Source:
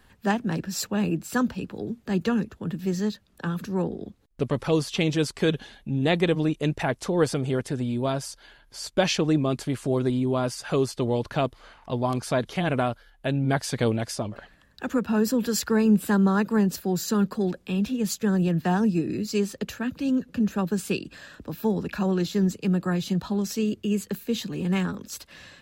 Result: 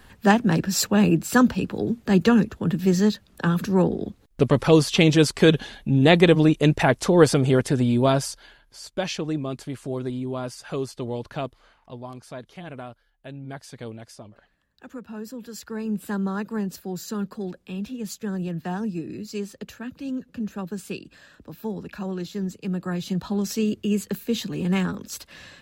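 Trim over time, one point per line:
8.19 s +7 dB
8.80 s -5 dB
11.43 s -5 dB
12.14 s -13 dB
15.50 s -13 dB
16.12 s -6 dB
22.48 s -6 dB
23.50 s +2 dB

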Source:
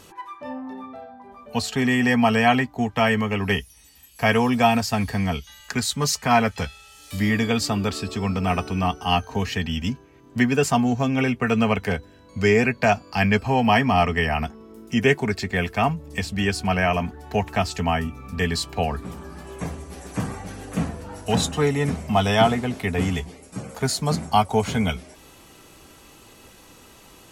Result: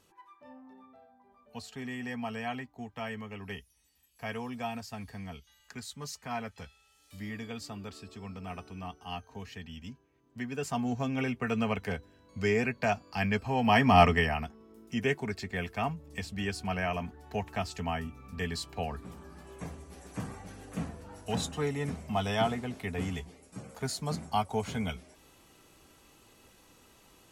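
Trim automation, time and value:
10.40 s -18.5 dB
10.92 s -10 dB
13.52 s -10 dB
14.03 s 0 dB
14.45 s -11 dB

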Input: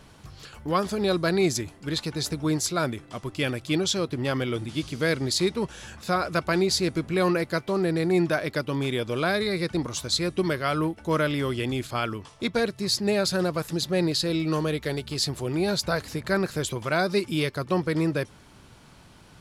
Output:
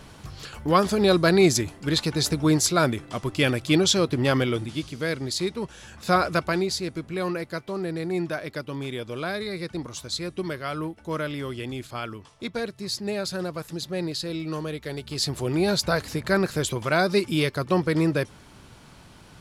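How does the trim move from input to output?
4.38 s +5 dB
4.94 s -3 dB
5.91 s -3 dB
6.15 s +5 dB
6.81 s -5 dB
14.85 s -5 dB
15.40 s +2.5 dB

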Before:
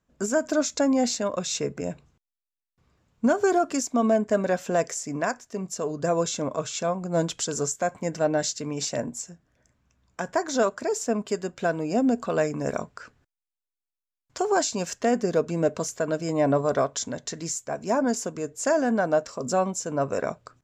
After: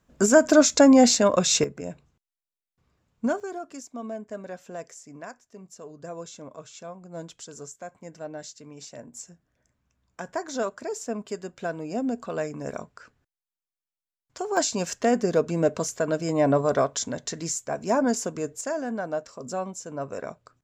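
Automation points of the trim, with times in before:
+7.5 dB
from 1.64 s -4 dB
from 3.40 s -13.5 dB
from 9.14 s -5.5 dB
from 14.57 s +1 dB
from 18.61 s -7 dB

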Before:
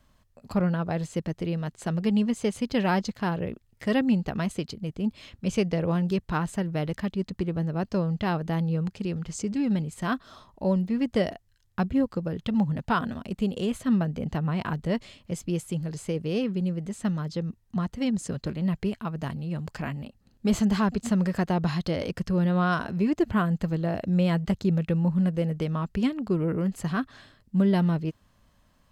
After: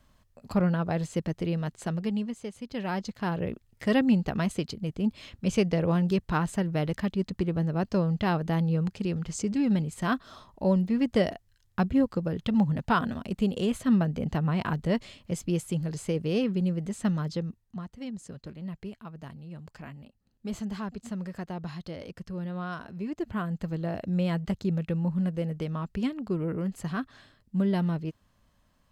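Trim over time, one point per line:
1.75 s 0 dB
2.53 s -12 dB
3.49 s +0.5 dB
17.32 s +0.5 dB
17.85 s -11 dB
22.88 s -11 dB
23.83 s -4 dB

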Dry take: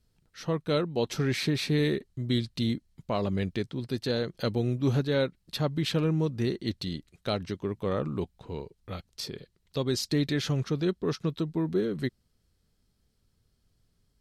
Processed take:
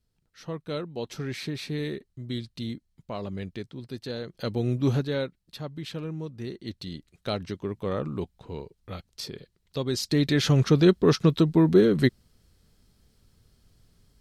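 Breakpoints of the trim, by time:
4.23 s -5.5 dB
4.78 s +3.5 dB
5.55 s -8 dB
6.37 s -8 dB
7.28 s 0 dB
9.90 s 0 dB
10.69 s +9.5 dB

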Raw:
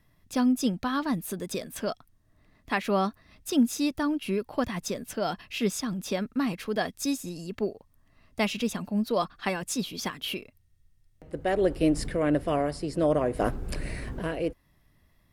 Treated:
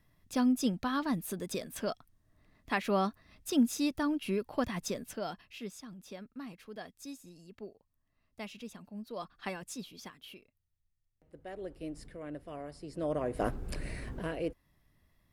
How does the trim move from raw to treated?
4.96 s -4 dB
5.72 s -16.5 dB
9.07 s -16.5 dB
9.45 s -9 dB
10.33 s -18 dB
12.50 s -18 dB
13.38 s -5.5 dB

